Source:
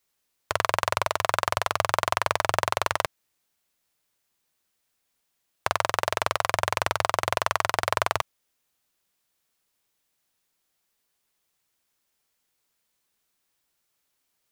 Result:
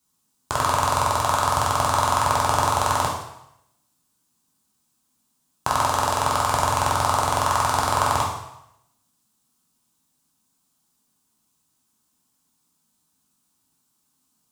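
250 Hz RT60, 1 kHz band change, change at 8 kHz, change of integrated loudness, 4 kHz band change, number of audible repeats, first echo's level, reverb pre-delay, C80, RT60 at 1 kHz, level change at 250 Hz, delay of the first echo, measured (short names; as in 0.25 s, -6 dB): 0.80 s, +6.5 dB, +8.0 dB, +5.0 dB, +2.5 dB, none, none, 5 ms, 6.5 dB, 0.85 s, +10.5 dB, none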